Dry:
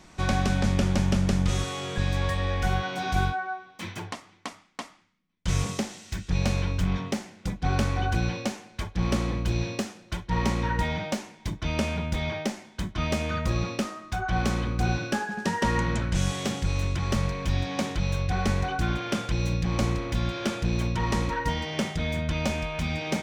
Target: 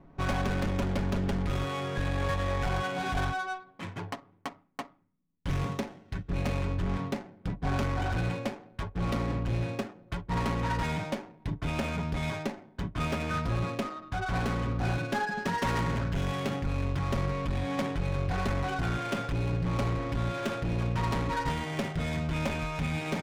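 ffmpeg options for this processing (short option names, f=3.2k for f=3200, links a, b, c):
-af "volume=24dB,asoftclip=hard,volume=-24dB,adynamicsmooth=sensitivity=7:basefreq=600,aecho=1:1:7.2:0.44,volume=-1dB"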